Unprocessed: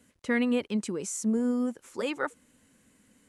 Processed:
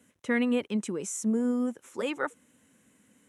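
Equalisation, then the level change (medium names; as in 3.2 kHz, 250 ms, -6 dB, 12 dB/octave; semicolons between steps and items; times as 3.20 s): high-pass 100 Hz; peaking EQ 4.6 kHz -11 dB 0.23 oct; 0.0 dB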